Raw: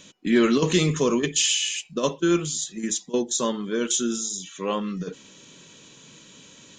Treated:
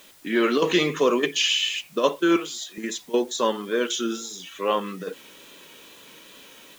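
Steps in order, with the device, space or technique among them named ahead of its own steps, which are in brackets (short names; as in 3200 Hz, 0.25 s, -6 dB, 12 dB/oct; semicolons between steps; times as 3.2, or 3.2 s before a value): dictaphone (BPF 380–3400 Hz; AGC gain up to 5 dB; wow and flutter; white noise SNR 28 dB); 2.36–2.78 HPF 280 Hz 12 dB/oct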